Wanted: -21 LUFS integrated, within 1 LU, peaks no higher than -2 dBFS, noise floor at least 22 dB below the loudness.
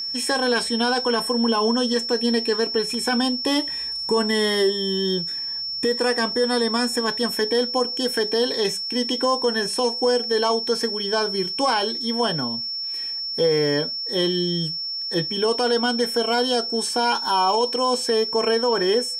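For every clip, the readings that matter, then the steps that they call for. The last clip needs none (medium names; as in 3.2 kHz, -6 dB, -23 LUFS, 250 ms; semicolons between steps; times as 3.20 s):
steady tone 5.4 kHz; tone level -26 dBFS; loudness -21.5 LUFS; peak level -9.0 dBFS; loudness target -21.0 LUFS
-> band-stop 5.4 kHz, Q 30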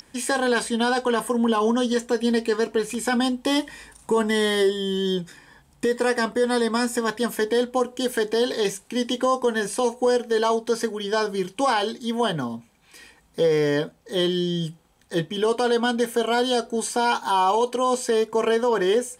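steady tone not found; loudness -23.0 LUFS; peak level -10.0 dBFS; loudness target -21.0 LUFS
-> trim +2 dB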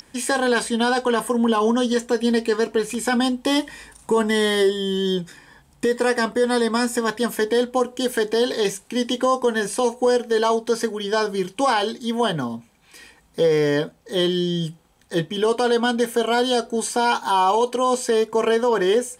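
loudness -21.0 LUFS; peak level -8.0 dBFS; noise floor -56 dBFS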